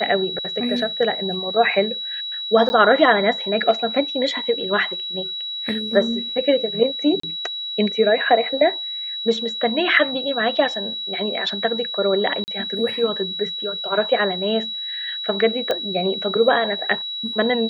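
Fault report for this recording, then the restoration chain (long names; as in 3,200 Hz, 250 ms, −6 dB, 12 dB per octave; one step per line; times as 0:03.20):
whistle 3,900 Hz −26 dBFS
0:02.69–0:02.70: drop-out 10 ms
0:07.20–0:07.23: drop-out 34 ms
0:12.44–0:12.48: drop-out 39 ms
0:15.71: click −9 dBFS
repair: click removal
notch filter 3,900 Hz, Q 30
repair the gap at 0:02.69, 10 ms
repair the gap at 0:07.20, 34 ms
repair the gap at 0:12.44, 39 ms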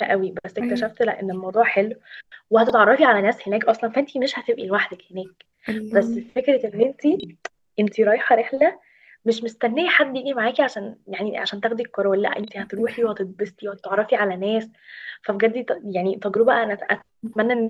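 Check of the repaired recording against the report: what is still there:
none of them is left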